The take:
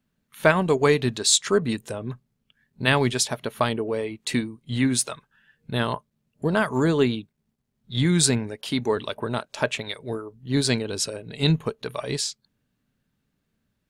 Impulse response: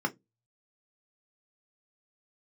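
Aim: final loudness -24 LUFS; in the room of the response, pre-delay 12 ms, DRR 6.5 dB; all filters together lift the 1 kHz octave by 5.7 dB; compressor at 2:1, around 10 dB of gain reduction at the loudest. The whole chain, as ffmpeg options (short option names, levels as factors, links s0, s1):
-filter_complex "[0:a]equalizer=f=1000:t=o:g=7,acompressor=threshold=0.0355:ratio=2,asplit=2[s0][s1];[1:a]atrim=start_sample=2205,adelay=12[s2];[s1][s2]afir=irnorm=-1:irlink=0,volume=0.2[s3];[s0][s3]amix=inputs=2:normalize=0,volume=1.78"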